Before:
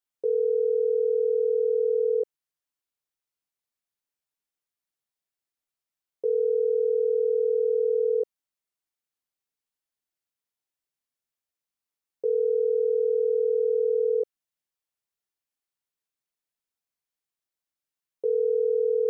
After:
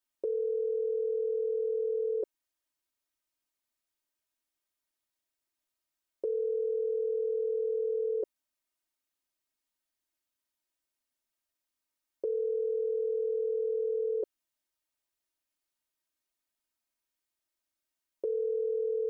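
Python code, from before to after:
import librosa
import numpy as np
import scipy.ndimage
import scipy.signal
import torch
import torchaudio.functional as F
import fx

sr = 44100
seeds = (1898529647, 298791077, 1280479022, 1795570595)

y = x + 0.82 * np.pad(x, (int(3.2 * sr / 1000.0), 0))[:len(x)]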